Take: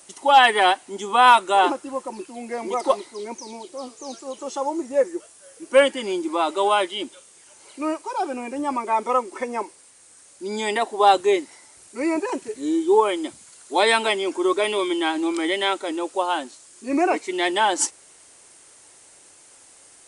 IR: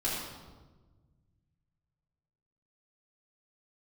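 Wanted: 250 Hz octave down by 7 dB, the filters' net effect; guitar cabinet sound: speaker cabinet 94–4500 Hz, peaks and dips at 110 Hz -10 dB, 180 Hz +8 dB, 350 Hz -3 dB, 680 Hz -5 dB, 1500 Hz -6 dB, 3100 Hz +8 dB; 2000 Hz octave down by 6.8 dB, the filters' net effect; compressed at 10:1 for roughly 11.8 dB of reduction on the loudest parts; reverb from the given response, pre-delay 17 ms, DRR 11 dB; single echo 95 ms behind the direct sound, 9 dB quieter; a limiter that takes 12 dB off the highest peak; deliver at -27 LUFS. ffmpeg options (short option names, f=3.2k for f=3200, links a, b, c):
-filter_complex "[0:a]equalizer=f=250:t=o:g=-8,equalizer=f=2k:t=o:g=-7,acompressor=threshold=-23dB:ratio=10,alimiter=level_in=2dB:limit=-24dB:level=0:latency=1,volume=-2dB,aecho=1:1:95:0.355,asplit=2[a][b];[1:a]atrim=start_sample=2205,adelay=17[c];[b][c]afir=irnorm=-1:irlink=0,volume=-18dB[d];[a][d]amix=inputs=2:normalize=0,highpass=94,equalizer=f=110:t=q:w=4:g=-10,equalizer=f=180:t=q:w=4:g=8,equalizer=f=350:t=q:w=4:g=-3,equalizer=f=680:t=q:w=4:g=-5,equalizer=f=1.5k:t=q:w=4:g=-6,equalizer=f=3.1k:t=q:w=4:g=8,lowpass=f=4.5k:w=0.5412,lowpass=f=4.5k:w=1.3066,volume=8dB"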